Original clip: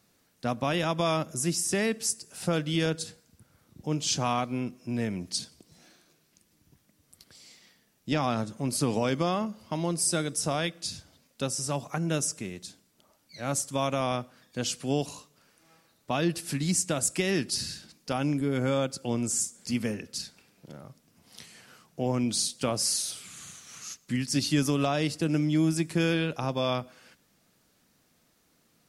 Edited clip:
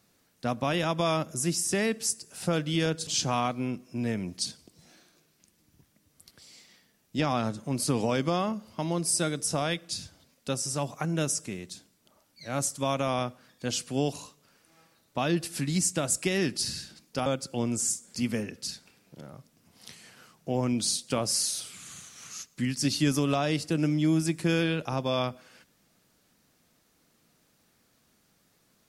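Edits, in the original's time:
0:03.07–0:04.00: remove
0:18.19–0:18.77: remove

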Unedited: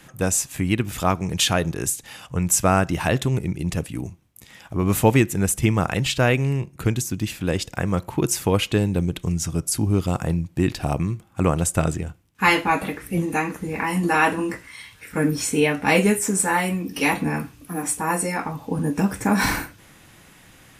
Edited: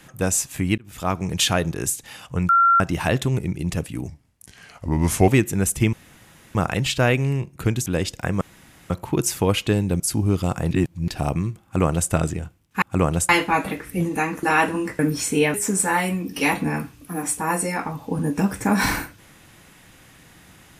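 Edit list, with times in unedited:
0:00.78–0:01.22: fade in
0:02.49–0:02.80: beep over 1,370 Hz −12 dBFS
0:04.08–0:05.10: play speed 85%
0:05.75: splice in room tone 0.62 s
0:07.06–0:07.40: remove
0:07.95: splice in room tone 0.49 s
0:09.05–0:09.64: remove
0:10.35–0:10.72: reverse
0:11.27–0:11.74: duplicate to 0:12.46
0:13.60–0:14.07: remove
0:14.63–0:15.20: remove
0:15.75–0:16.14: remove

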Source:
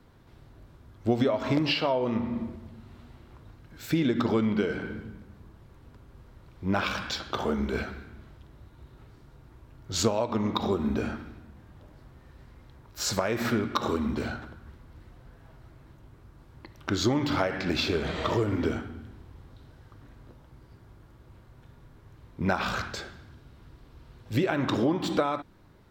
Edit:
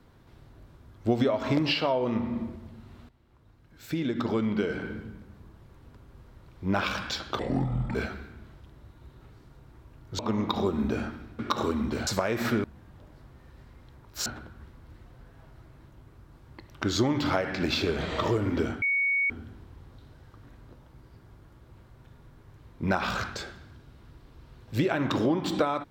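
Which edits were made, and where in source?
0:03.09–0:04.87: fade in, from −15.5 dB
0:07.39–0:07.72: play speed 59%
0:09.96–0:10.25: remove
0:11.45–0:13.07: swap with 0:13.64–0:14.32
0:18.88: insert tone 2,230 Hz −22.5 dBFS 0.48 s

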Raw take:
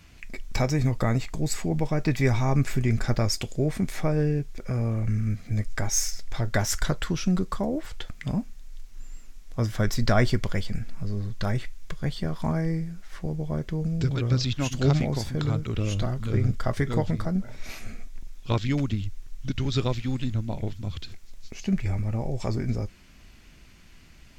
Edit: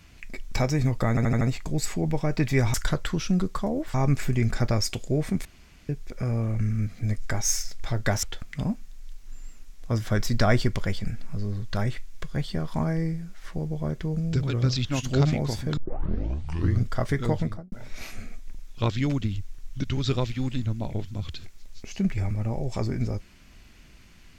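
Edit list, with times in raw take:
0:01.09: stutter 0.08 s, 5 plays
0:03.93–0:04.37: fill with room tone
0:06.71–0:07.91: move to 0:02.42
0:15.45: tape start 1.08 s
0:17.07–0:17.40: fade out and dull

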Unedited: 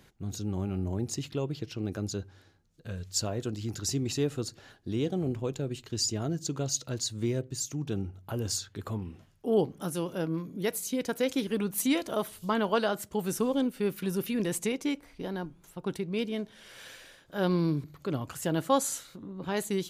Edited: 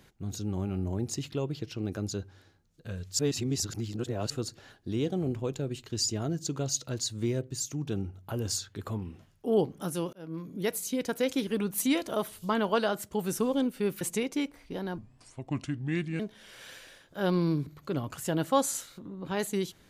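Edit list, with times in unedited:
0:03.19–0:04.30: reverse
0:10.13–0:10.54: fade in
0:14.01–0:14.50: remove
0:15.47–0:16.37: play speed 74%

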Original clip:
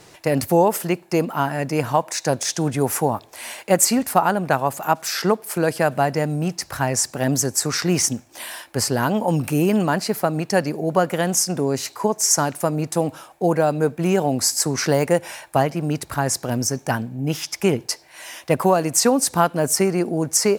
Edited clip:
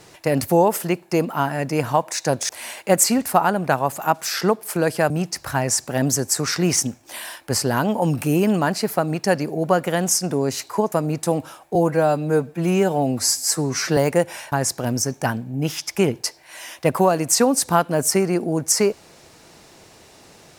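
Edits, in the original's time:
0:02.49–0:03.30: remove
0:05.91–0:06.36: remove
0:12.18–0:12.61: remove
0:13.44–0:14.92: time-stretch 1.5×
0:15.47–0:16.17: remove

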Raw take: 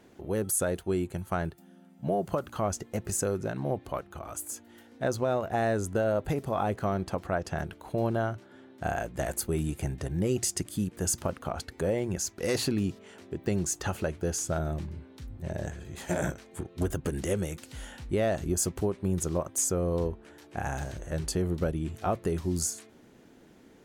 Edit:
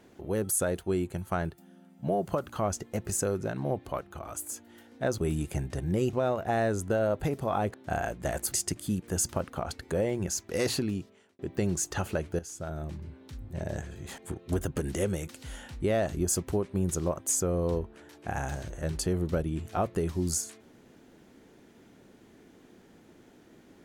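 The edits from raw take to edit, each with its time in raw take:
0:06.79–0:08.68: remove
0:09.46–0:10.41: move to 0:05.18
0:12.59–0:13.28: fade out
0:14.28–0:15.16: fade in, from −14 dB
0:16.07–0:16.47: remove

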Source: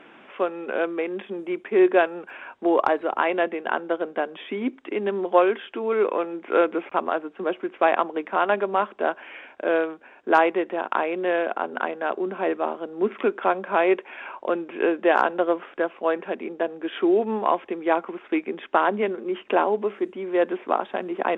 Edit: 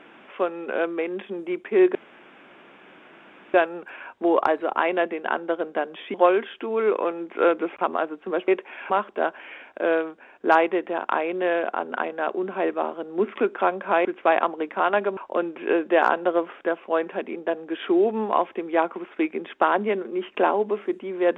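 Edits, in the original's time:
0:01.95: splice in room tone 1.59 s
0:04.55–0:05.27: remove
0:07.61–0:08.73: swap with 0:13.88–0:14.30

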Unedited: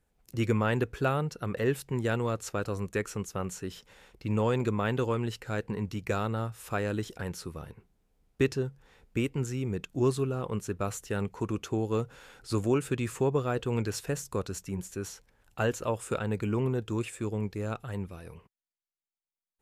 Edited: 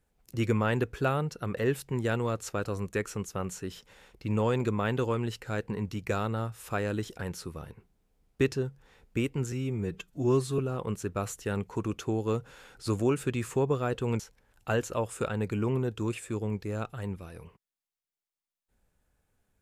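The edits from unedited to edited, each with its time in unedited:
0:09.52–0:10.23: time-stretch 1.5×
0:13.84–0:15.10: remove

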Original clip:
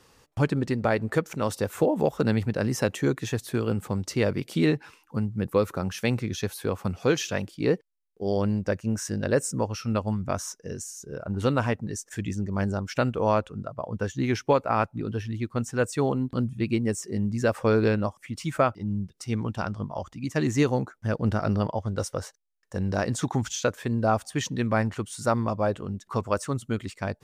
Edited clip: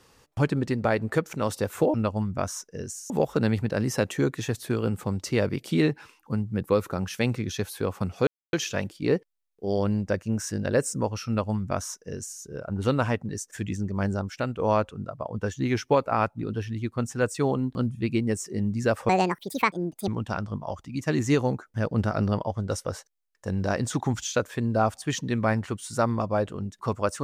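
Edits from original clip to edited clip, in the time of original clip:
0:07.11: splice in silence 0.26 s
0:09.85–0:11.01: duplicate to 0:01.94
0:12.88–0:13.17: clip gain −4.5 dB
0:17.67–0:19.36: play speed 171%

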